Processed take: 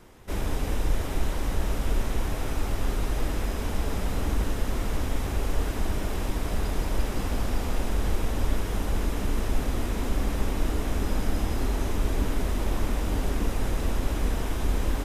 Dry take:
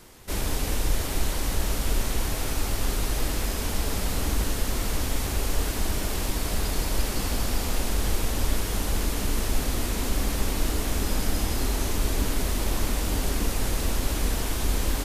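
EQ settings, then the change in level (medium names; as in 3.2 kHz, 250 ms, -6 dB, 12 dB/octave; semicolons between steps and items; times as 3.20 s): treble shelf 3.1 kHz -11.5 dB; band-stop 4.4 kHz, Q 14; 0.0 dB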